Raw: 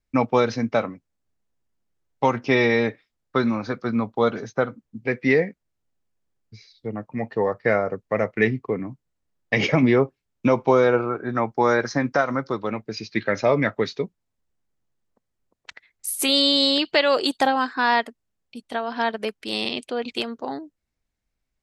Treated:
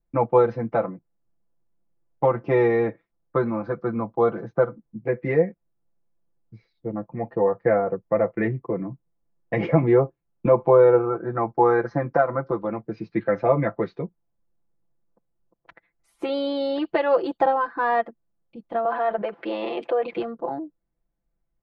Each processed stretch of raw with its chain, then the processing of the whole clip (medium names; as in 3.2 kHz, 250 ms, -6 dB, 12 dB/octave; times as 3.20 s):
18.85–20.17 s: high-pass 170 Hz + three-band isolator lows -19 dB, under 370 Hz, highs -24 dB, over 4.4 kHz + level flattener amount 70%
whole clip: dynamic bell 220 Hz, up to -4 dB, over -30 dBFS, Q 0.86; low-pass 1 kHz 12 dB/octave; comb 5.9 ms, depth 95%